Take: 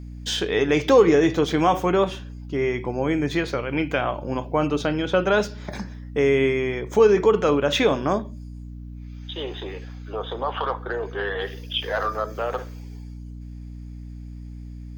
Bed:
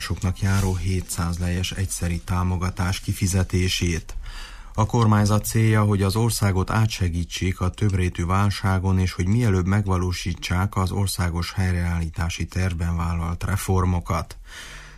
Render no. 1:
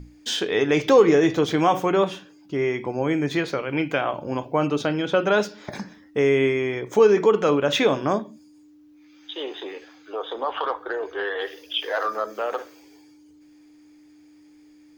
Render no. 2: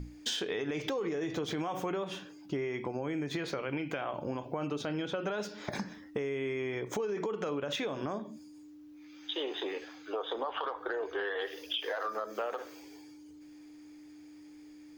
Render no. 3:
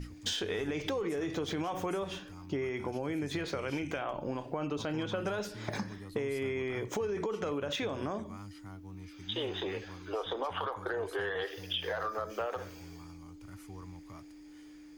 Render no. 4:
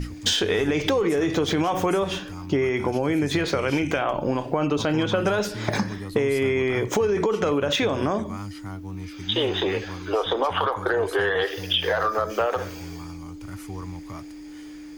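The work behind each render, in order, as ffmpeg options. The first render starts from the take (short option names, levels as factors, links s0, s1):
-af "bandreject=f=60:t=h:w=6,bandreject=f=120:t=h:w=6,bandreject=f=180:t=h:w=6,bandreject=f=240:t=h:w=6"
-af "alimiter=limit=0.141:level=0:latency=1:release=84,acompressor=threshold=0.0251:ratio=6"
-filter_complex "[1:a]volume=0.0422[s0];[0:a][s0]amix=inputs=2:normalize=0"
-af "volume=3.98"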